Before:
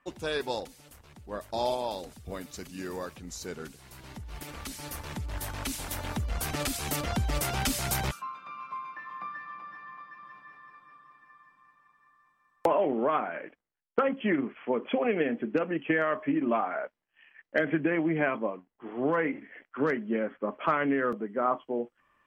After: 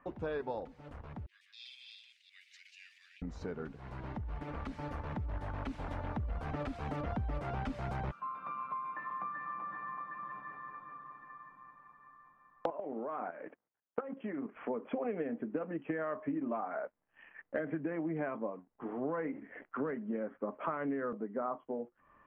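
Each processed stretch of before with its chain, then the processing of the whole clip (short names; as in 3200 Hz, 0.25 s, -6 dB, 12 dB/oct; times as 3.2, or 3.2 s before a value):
1.26–3.22 reverse delay 0.173 s, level -4 dB + steep high-pass 2200 Hz 48 dB/oct
12.7–14.55 HPF 240 Hz 6 dB/oct + air absorption 80 m + level quantiser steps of 12 dB
whole clip: LPF 1300 Hz 12 dB/oct; compressor 3:1, threshold -47 dBFS; notch 360 Hz, Q 12; gain +8 dB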